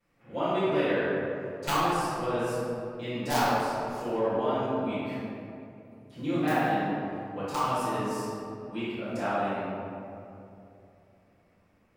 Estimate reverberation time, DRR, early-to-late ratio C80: 2.7 s, -15.5 dB, -2.0 dB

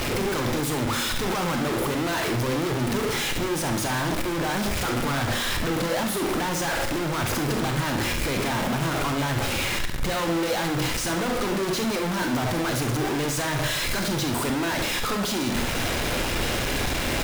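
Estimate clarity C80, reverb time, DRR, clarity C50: 11.5 dB, 0.65 s, 4.5 dB, 7.5 dB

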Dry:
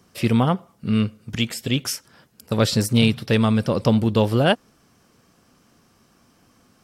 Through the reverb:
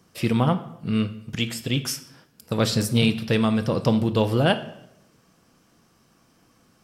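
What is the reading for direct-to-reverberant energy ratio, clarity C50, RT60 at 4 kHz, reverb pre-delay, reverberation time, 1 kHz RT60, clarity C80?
9.0 dB, 14.0 dB, 0.65 s, 6 ms, 0.80 s, 0.75 s, 17.0 dB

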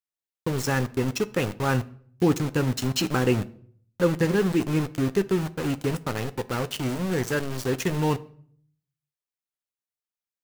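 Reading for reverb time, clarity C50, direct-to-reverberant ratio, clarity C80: 0.60 s, 19.5 dB, 11.5 dB, 23.5 dB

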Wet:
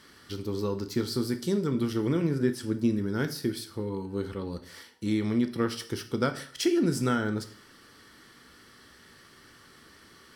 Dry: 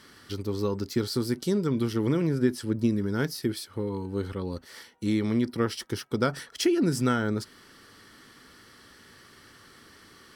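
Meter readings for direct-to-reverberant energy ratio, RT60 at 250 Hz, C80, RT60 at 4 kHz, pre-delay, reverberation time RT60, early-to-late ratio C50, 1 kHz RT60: 8.5 dB, 0.55 s, 17.0 dB, 0.50 s, 6 ms, 0.55 s, 13.5 dB, 0.55 s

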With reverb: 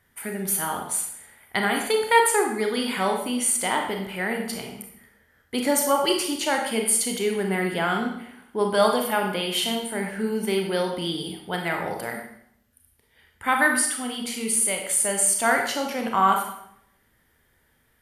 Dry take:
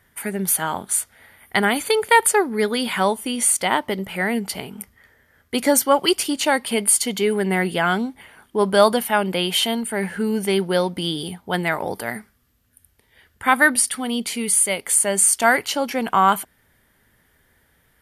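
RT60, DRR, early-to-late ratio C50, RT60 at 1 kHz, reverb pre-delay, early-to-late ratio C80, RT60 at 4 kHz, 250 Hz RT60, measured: 0.75 s, 2.0 dB, 4.5 dB, 0.70 s, 28 ms, 8.0 dB, 0.65 s, 0.80 s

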